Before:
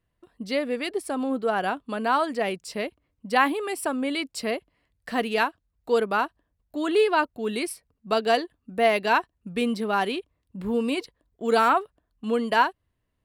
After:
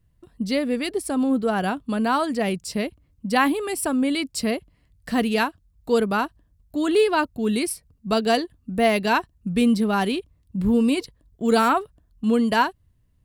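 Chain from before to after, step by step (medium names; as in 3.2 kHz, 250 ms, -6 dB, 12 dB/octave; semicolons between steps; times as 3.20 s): tone controls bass +15 dB, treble +7 dB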